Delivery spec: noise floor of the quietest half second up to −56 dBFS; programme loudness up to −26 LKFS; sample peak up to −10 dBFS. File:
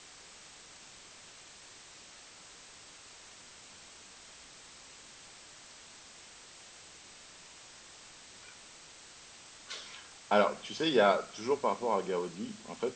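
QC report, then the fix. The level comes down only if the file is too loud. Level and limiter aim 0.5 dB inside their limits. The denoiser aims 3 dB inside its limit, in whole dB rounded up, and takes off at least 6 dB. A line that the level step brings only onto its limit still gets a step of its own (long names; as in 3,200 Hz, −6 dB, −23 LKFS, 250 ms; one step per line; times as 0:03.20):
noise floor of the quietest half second −54 dBFS: out of spec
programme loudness −31.5 LKFS: in spec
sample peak −13.0 dBFS: in spec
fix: broadband denoise 6 dB, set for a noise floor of −54 dBFS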